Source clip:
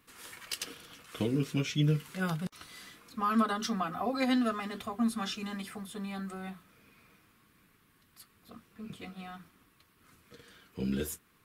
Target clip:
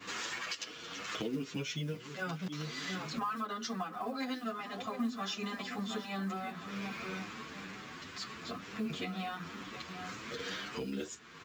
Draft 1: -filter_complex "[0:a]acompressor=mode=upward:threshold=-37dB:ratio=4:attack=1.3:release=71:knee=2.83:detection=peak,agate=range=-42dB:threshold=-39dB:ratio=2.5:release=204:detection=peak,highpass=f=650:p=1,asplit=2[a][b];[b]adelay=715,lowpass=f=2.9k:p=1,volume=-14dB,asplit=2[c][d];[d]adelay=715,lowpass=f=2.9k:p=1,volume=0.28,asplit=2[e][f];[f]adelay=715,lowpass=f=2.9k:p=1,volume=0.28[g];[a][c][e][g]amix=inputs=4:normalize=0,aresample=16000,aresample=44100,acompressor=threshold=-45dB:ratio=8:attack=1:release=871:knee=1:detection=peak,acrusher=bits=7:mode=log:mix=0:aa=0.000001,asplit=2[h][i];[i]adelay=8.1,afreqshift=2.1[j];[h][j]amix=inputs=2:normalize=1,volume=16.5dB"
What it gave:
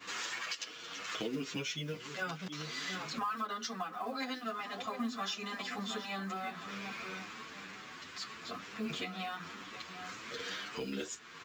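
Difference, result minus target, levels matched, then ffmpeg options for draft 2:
250 Hz band -3.0 dB
-filter_complex "[0:a]acompressor=mode=upward:threshold=-37dB:ratio=4:attack=1.3:release=71:knee=2.83:detection=peak,agate=range=-42dB:threshold=-39dB:ratio=2.5:release=204:detection=peak,highpass=f=240:p=1,asplit=2[a][b];[b]adelay=715,lowpass=f=2.9k:p=1,volume=-14dB,asplit=2[c][d];[d]adelay=715,lowpass=f=2.9k:p=1,volume=0.28,asplit=2[e][f];[f]adelay=715,lowpass=f=2.9k:p=1,volume=0.28[g];[a][c][e][g]amix=inputs=4:normalize=0,aresample=16000,aresample=44100,acompressor=threshold=-45dB:ratio=8:attack=1:release=871:knee=1:detection=peak,acrusher=bits=7:mode=log:mix=0:aa=0.000001,asplit=2[h][i];[i]adelay=8.1,afreqshift=2.1[j];[h][j]amix=inputs=2:normalize=1,volume=16.5dB"

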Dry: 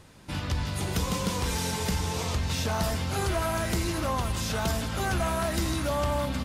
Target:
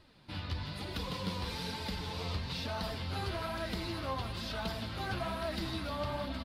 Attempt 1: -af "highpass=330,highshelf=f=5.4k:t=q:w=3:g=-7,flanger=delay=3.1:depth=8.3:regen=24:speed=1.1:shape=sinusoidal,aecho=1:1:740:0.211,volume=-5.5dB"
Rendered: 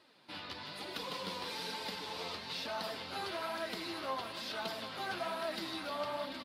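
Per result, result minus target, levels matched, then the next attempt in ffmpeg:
echo 0.349 s early; 250 Hz band -4.0 dB
-af "highpass=330,highshelf=f=5.4k:t=q:w=3:g=-7,flanger=delay=3.1:depth=8.3:regen=24:speed=1.1:shape=sinusoidal,aecho=1:1:1089:0.211,volume=-5.5dB"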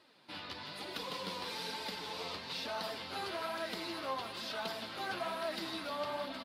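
250 Hz band -4.5 dB
-af "highshelf=f=5.4k:t=q:w=3:g=-7,flanger=delay=3.1:depth=8.3:regen=24:speed=1.1:shape=sinusoidal,aecho=1:1:1089:0.211,volume=-5.5dB"

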